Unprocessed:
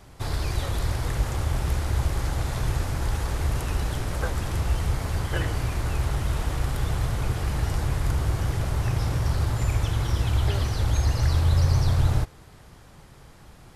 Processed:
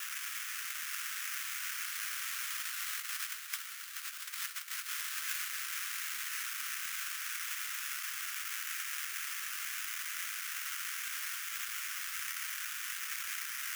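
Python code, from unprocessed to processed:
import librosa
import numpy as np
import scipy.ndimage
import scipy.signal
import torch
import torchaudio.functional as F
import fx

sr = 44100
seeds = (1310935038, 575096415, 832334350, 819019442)

p1 = fx.doppler_pass(x, sr, speed_mps=7, closest_m=3.3, pass_at_s=3.87)
p2 = fx.peak_eq(p1, sr, hz=3200.0, db=-13.5, octaves=1.6)
p3 = fx.quant_dither(p2, sr, seeds[0], bits=6, dither='triangular')
p4 = p2 + (p3 * librosa.db_to_amplitude(-7.0))
p5 = fx.over_compress(p4, sr, threshold_db=-29.0, ratio=-0.5)
p6 = fx.echo_feedback(p5, sr, ms=845, feedback_pct=48, wet_db=-8)
p7 = fx.sample_hold(p6, sr, seeds[1], rate_hz=4200.0, jitter_pct=20)
p8 = scipy.signal.sosfilt(scipy.signal.butter(8, 1300.0, 'highpass', fs=sr, output='sos'), p7)
y = fx.high_shelf(p8, sr, hz=6300.0, db=11.5)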